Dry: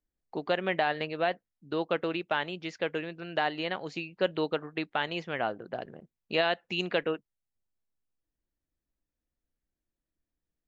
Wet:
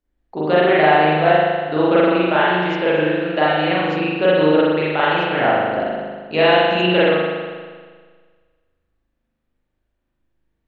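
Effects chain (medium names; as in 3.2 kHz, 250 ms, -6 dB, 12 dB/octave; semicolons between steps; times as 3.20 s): treble shelf 4.4 kHz -10 dB; spring tank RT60 1.6 s, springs 39 ms, chirp 25 ms, DRR -9 dB; trim +6.5 dB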